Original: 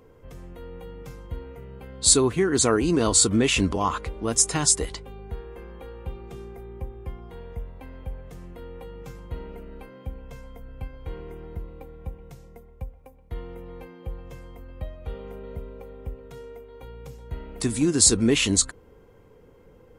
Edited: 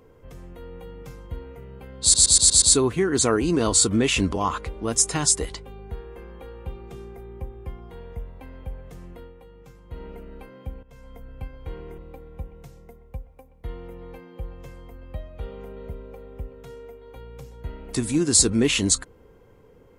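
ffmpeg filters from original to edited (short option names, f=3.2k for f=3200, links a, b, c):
-filter_complex "[0:a]asplit=10[a][b][c][d][e][f][g][h][i][j];[a]atrim=end=2.142[k];[b]atrim=start=2.018:end=2.142[l];[c]atrim=start=2.018:end=2.142[m];[d]atrim=start=2.018:end=2.142[n];[e]atrim=start=2.018:end=2.142[o];[f]atrim=start=2.018:end=8.75,asetpts=PTS-STARTPTS,afade=t=out:st=6.532:d=0.2:silence=0.398107[p];[g]atrim=start=8.75:end=9.25,asetpts=PTS-STARTPTS,volume=-8dB[q];[h]atrim=start=9.25:end=10.23,asetpts=PTS-STARTPTS,afade=t=in:d=0.2:silence=0.398107,afade=t=out:st=0.976:d=0.004:c=hsin:silence=0.149624[r];[i]atrim=start=10.23:end=11.382,asetpts=PTS-STARTPTS,afade=t=in:d=0.32:silence=0.149624[s];[j]atrim=start=11.648[t];[k][l]acrossfade=d=0.004:c1=hsin:c2=hsin[u];[u][m]acrossfade=d=0.004:c1=hsin:c2=hsin[v];[v][n]acrossfade=d=0.004:c1=hsin:c2=hsin[w];[w][o]acrossfade=d=0.004:c1=hsin:c2=hsin[x];[p][q][r][s]concat=n=4:v=0:a=1[y];[x][y]acrossfade=d=0.004:c1=hsin:c2=hsin[z];[z][t]acrossfade=d=0.004:c1=hsin:c2=hsin"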